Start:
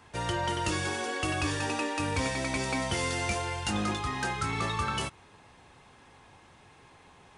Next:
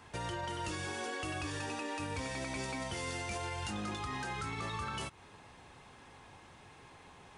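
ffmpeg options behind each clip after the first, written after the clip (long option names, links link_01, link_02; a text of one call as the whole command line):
ffmpeg -i in.wav -af "alimiter=level_in=6dB:limit=-24dB:level=0:latency=1:release=169,volume=-6dB" out.wav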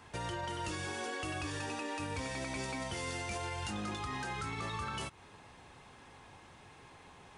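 ffmpeg -i in.wav -af anull out.wav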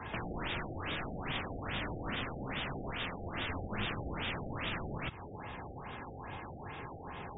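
ffmpeg -i in.wav -filter_complex "[0:a]aeval=exprs='(mod(66.8*val(0)+1,2)-1)/66.8':channel_layout=same,acrossover=split=260|3000[link_01][link_02][link_03];[link_02]acompressor=threshold=-54dB:ratio=3[link_04];[link_01][link_04][link_03]amix=inputs=3:normalize=0,afftfilt=real='re*lt(b*sr/1024,780*pow(3800/780,0.5+0.5*sin(2*PI*2.4*pts/sr)))':imag='im*lt(b*sr/1024,780*pow(3800/780,0.5+0.5*sin(2*PI*2.4*pts/sr)))':win_size=1024:overlap=0.75,volume=12.5dB" out.wav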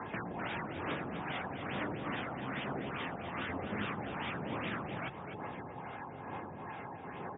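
ffmpeg -i in.wav -af "aphaser=in_gain=1:out_gain=1:delay=1.5:decay=0.36:speed=1.1:type=triangular,highpass=170,lowpass=2100,aecho=1:1:252|504|756:0.422|0.101|0.0243,volume=1dB" out.wav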